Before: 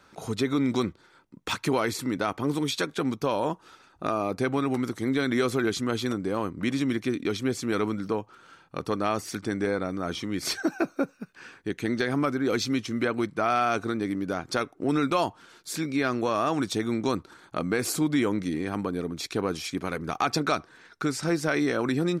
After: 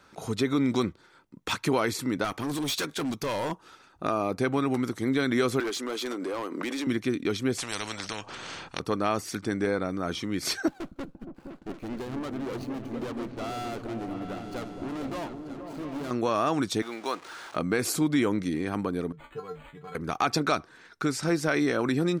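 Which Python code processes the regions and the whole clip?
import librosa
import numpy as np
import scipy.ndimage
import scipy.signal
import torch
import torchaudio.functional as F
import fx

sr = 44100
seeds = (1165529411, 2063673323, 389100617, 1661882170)

y = fx.chain(x, sr, fx.high_shelf(hz=2400.0, db=7.0),
    fx.clip_hard(threshold_db=-26.5), at=(2.24, 3.52))
y = fx.chain(y, sr, fx.highpass(hz=310.0, slope=24),
    fx.overload_stage(gain_db=28.0),
    fx.pre_swell(db_per_s=38.0), at=(5.6, 6.87))
y = fx.chain(y, sr, fx.lowpass(hz=8300.0, slope=24),
    fx.spectral_comp(ratio=4.0), at=(7.58, 8.8))
y = fx.chain(y, sr, fx.median_filter(points=25),
    fx.tube_stage(drive_db=32.0, bias=0.75),
    fx.echo_opening(ms=234, hz=200, octaves=2, feedback_pct=70, wet_db=-3), at=(10.68, 16.11))
y = fx.chain(y, sr, fx.zero_step(step_db=-37.5),
    fx.highpass(hz=580.0, slope=12),
    fx.resample_linear(factor=3), at=(16.82, 17.56))
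y = fx.chain(y, sr, fx.comb_fb(f0_hz=150.0, decay_s=0.18, harmonics='odd', damping=0.0, mix_pct=100),
    fx.dynamic_eq(hz=1300.0, q=1.1, threshold_db=-57.0, ratio=4.0, max_db=5),
    fx.resample_linear(factor=8), at=(19.12, 19.95))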